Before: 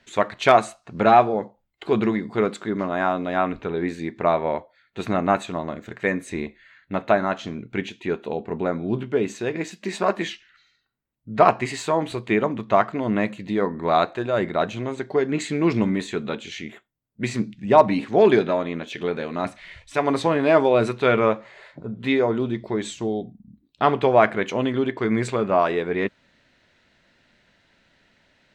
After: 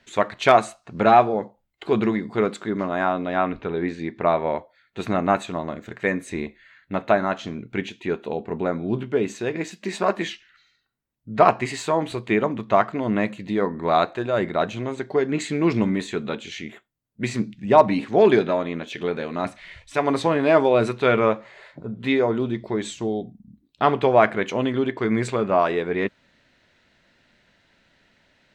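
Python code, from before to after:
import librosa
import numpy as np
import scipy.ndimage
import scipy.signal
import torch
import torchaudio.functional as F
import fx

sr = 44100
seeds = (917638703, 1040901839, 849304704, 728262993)

y = fx.lowpass(x, sr, hz=5400.0, slope=12, at=(3.05, 4.4))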